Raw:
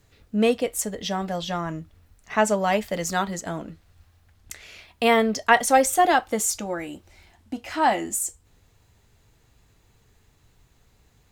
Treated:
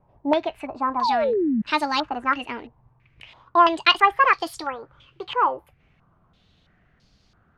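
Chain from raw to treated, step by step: speed glide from 134% -> 165%; painted sound fall, 1.01–1.62, 200–1100 Hz -19 dBFS; stepped low-pass 3 Hz 910–4700 Hz; gain -2.5 dB

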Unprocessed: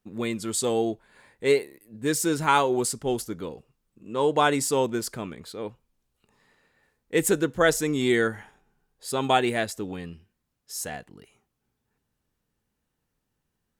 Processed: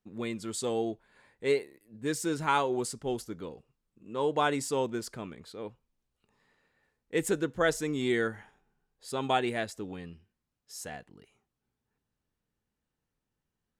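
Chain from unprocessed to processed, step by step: high shelf 11000 Hz -11.5 dB; gain -6 dB

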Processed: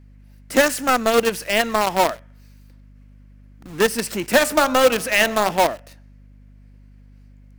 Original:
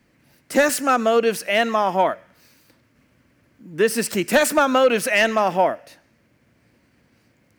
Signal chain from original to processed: in parallel at -6 dB: companded quantiser 2-bit; 4.41–5.51 on the sum: de-hum 67.08 Hz, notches 21; hum 50 Hz, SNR 25 dB; gain -5.5 dB

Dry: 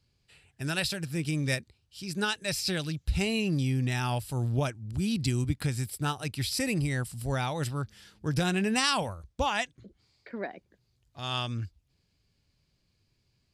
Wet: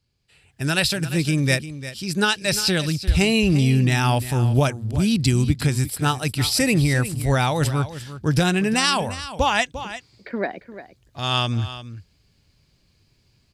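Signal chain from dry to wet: on a send: echo 0.349 s -13.5 dB; on the sum: AGC gain up to 12 dB; gain -1.5 dB

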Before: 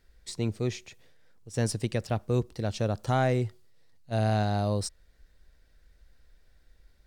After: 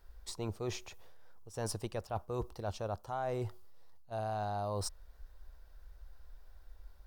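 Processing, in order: ten-band EQ 125 Hz -11 dB, 250 Hz -11 dB, 500 Hz -4 dB, 1000 Hz +6 dB, 2000 Hz -12 dB, 4000 Hz -6 dB, 8000 Hz -9 dB; reverse; compressor 8:1, threshold -41 dBFS, peak gain reduction 16 dB; reverse; gain +7 dB

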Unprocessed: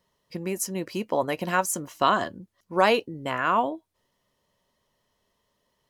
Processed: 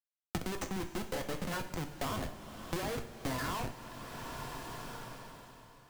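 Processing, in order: per-bin expansion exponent 1.5; LPF 3600 Hz 12 dB/oct; low shelf 140 Hz -11.5 dB; compressor 12:1, threshold -32 dBFS, peak gain reduction 16.5 dB; Schmitt trigger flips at -39.5 dBFS; two-slope reverb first 0.35 s, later 3.3 s, from -19 dB, DRR 4 dB; three-band squash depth 100%; gain +4.5 dB

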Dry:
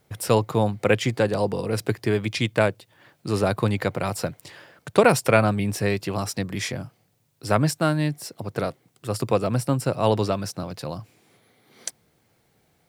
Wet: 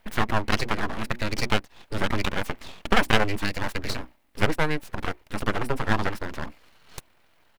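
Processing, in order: notches 60/120/180/240 Hz; in parallel at +1 dB: compressor 6:1, threshold -31 dBFS, peak gain reduction 18.5 dB; on the sum: EQ curve 260 Hz 0 dB, 460 Hz -11 dB, 810 Hz +9 dB, 1200 Hz +1 dB, 2100 Hz +7 dB, 6200 Hz -13 dB, 11000 Hz -6 dB; full-wave rectifier; tempo 1.7×; gain -2 dB

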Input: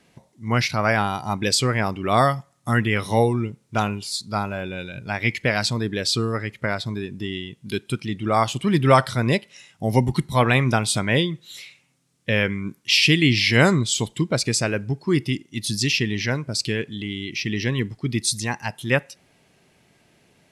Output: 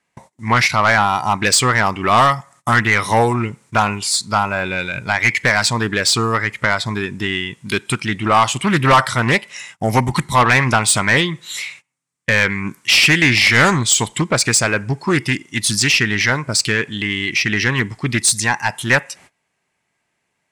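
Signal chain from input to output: gate -52 dBFS, range -24 dB; graphic EQ 1000/2000/8000 Hz +10/+9/+11 dB; in parallel at -1 dB: compressor, threshold -21 dBFS, peak gain reduction 18.5 dB; on the sum: soft clip -6 dBFS, distortion -11 dB; Doppler distortion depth 0.2 ms

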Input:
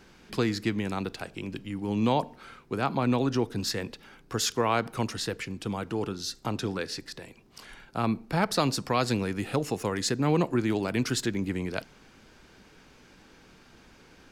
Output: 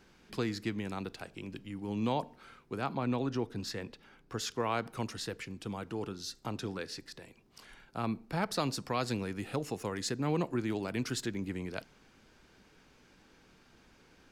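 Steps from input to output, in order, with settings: 2.93–4.6 high shelf 6000 Hz -7 dB; gain -7 dB

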